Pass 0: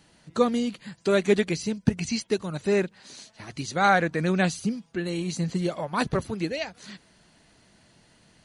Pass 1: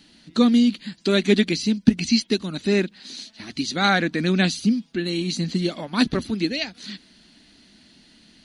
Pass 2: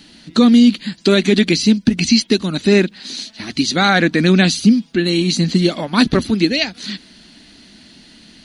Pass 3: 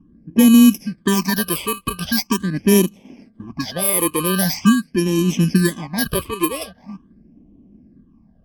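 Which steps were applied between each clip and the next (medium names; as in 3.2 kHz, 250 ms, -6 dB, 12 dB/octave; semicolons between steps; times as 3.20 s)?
graphic EQ 125/250/500/1000/4000/8000 Hz -11/+11/-7/-6/+9/-5 dB; trim +3.5 dB
loudness maximiser +10.5 dB; trim -1.5 dB
bit-reversed sample order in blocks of 32 samples; level-controlled noise filter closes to 450 Hz, open at -10 dBFS; phase shifter stages 8, 0.43 Hz, lowest notch 210–1500 Hz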